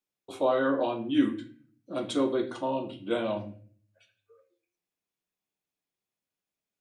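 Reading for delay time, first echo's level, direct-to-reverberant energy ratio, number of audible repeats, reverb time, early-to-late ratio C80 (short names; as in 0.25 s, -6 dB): none, none, 4.0 dB, none, 0.45 s, 15.0 dB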